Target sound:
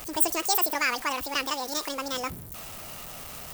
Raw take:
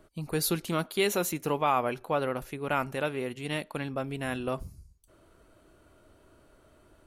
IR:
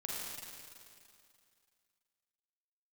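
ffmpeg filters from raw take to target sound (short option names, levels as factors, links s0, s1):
-af "aeval=exprs='val(0)+0.5*0.0126*sgn(val(0))':c=same,crystalizer=i=4.5:c=0,asetrate=88200,aresample=44100,volume=0.794"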